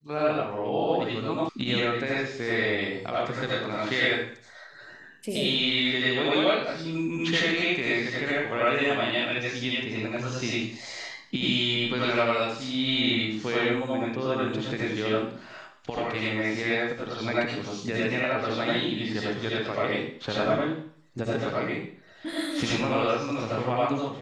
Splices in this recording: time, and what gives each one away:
1.49 s: sound stops dead

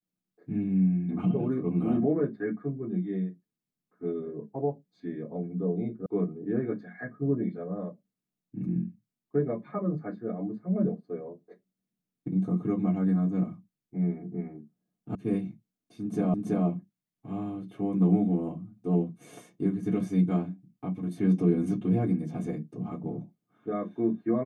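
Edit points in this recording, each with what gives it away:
6.06 s: sound stops dead
15.15 s: sound stops dead
16.34 s: repeat of the last 0.33 s

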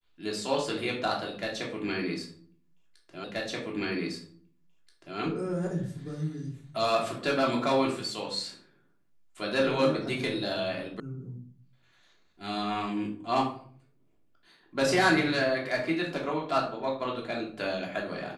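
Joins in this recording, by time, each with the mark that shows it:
3.24 s: repeat of the last 1.93 s
11.00 s: sound stops dead

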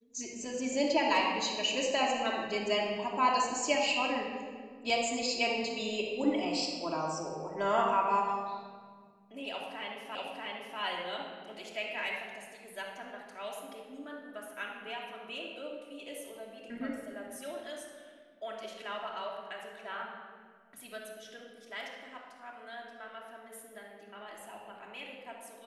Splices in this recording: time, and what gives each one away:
10.15 s: repeat of the last 0.64 s

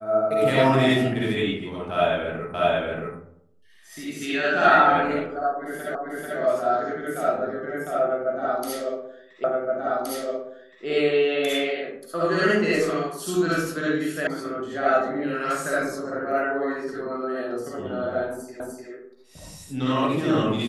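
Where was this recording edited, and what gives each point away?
2.54 s: repeat of the last 0.63 s
5.95 s: repeat of the last 0.44 s
9.44 s: repeat of the last 1.42 s
14.27 s: sound stops dead
18.60 s: repeat of the last 0.3 s

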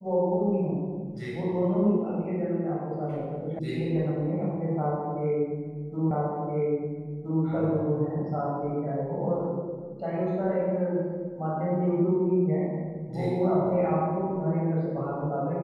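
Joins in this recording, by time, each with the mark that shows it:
3.59 s: sound stops dead
6.11 s: repeat of the last 1.32 s

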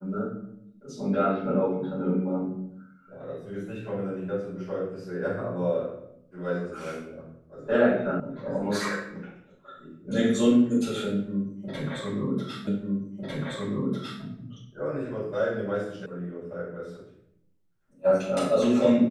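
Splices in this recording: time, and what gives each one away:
8.20 s: sound stops dead
12.67 s: repeat of the last 1.55 s
16.06 s: sound stops dead

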